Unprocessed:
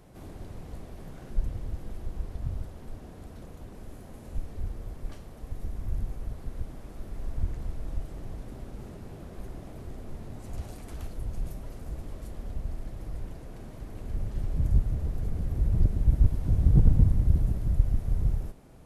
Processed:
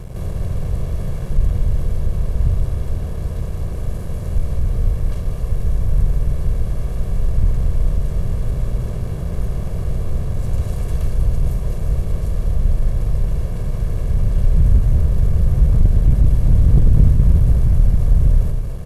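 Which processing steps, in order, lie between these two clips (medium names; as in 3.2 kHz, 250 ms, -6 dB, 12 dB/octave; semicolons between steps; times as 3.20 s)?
spectral levelling over time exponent 0.6; comb 1.8 ms, depth 79%; waveshaping leveller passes 2; on a send: loudspeakers at several distances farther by 69 m -10 dB, 81 m -11 dB; on the sum: trim -3 dB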